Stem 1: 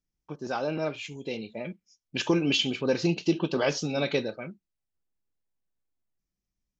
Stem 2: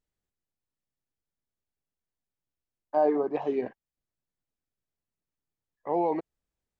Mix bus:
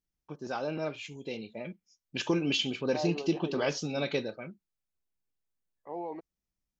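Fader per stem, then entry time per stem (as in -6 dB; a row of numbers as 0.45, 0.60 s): -4.0, -11.5 dB; 0.00, 0.00 s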